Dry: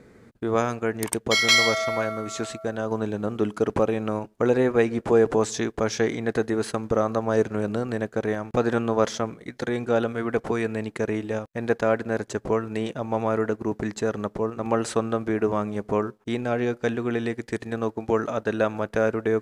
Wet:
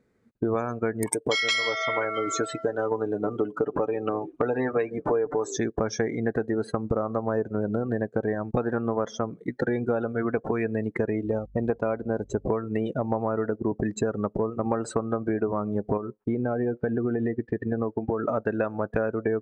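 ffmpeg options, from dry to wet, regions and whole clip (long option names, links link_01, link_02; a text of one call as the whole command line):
ffmpeg -i in.wav -filter_complex "[0:a]asettb=1/sr,asplit=3[link_01][link_02][link_03];[link_01]atrim=end=1.094[link_04];[link_02]atrim=start=1.09:end=5.57,asetpts=PTS-STARTPTS,afade=type=in:duration=0.004:curve=qsin,afade=type=out:start_time=4.476:duration=0.004:curve=qsin,equalizer=frequency=68:width=0.51:gain=-9.5,aecho=1:1:6.8:0.54,atrim=end_sample=197568,asplit=5[link_05][link_06][link_07][link_08][link_09];[link_06]adelay=327,afreqshift=-61,volume=-22dB[link_10];[link_07]adelay=654,afreqshift=-122,volume=-27.2dB[link_11];[link_08]adelay=981,afreqshift=-183,volume=-32.4dB[link_12];[link_09]adelay=1308,afreqshift=-244,volume=-37.6dB[link_13];[link_05][link_10][link_11][link_12][link_13]amix=inputs=5:normalize=0,atrim=end_sample=197568[link_14];[link_03]atrim=start=5.566[link_15];[link_04][link_14]acrossfade=duration=0.004:curve1=hsin:curve2=qsin[link_16];[link_16][link_15]acrossfade=duration=0.004:curve1=qsin:curve2=hsin,asettb=1/sr,asplit=3[link_17][link_18][link_19];[link_17]atrim=end=11.224[link_20];[link_18]atrim=start=11.22:end=12.5,asetpts=PTS-STARTPTS,afade=type=in:duration=0.004:curve=qsin,afade=type=out:start_time=1.276:duration=0.004:curve=qsin,lowpass=11000,equalizer=frequency=1700:width=6.4:gain=-9,aeval=exprs='val(0)+0.00398*(sin(2*PI*50*n/s)+sin(2*PI*2*50*n/s)/2+sin(2*PI*3*50*n/s)/3+sin(2*PI*4*50*n/s)/4+sin(2*PI*5*50*n/s)/5)':channel_layout=same[link_21];[link_19]atrim=start=12.496[link_22];[link_20][link_21]acrossfade=duration=0.004:curve1=hsin:curve2=qsin[link_23];[link_23][link_22]acrossfade=duration=0.004:curve1=qsin:curve2=hsin,asettb=1/sr,asplit=3[link_24][link_25][link_26];[link_24]atrim=end=15.974[link_27];[link_25]atrim=start=15.97:end=18.27,asetpts=PTS-STARTPTS,afade=type=in:duration=0.004:curve=qsin,afade=type=out:start_time=2.296:duration=0.004:curve=qsin,lowpass=2600,acompressor=threshold=-28dB:ratio=2.5:attack=3.2:release=140:knee=1:detection=peak[link_28];[link_26]atrim=start=18.266[link_29];[link_27][link_28]acrossfade=duration=0.004:curve1=hsin:curve2=qsin[link_30];[link_30][link_29]acrossfade=duration=0.004:curve1=qsin:curve2=hsin,afftdn=noise_reduction=26:noise_floor=-31,acompressor=threshold=-31dB:ratio=10,volume=8.5dB" out.wav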